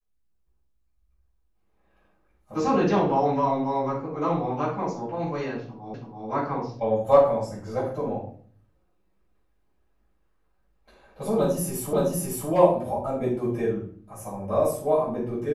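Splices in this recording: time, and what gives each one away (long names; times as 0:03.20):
0:05.94: the same again, the last 0.33 s
0:11.93: the same again, the last 0.56 s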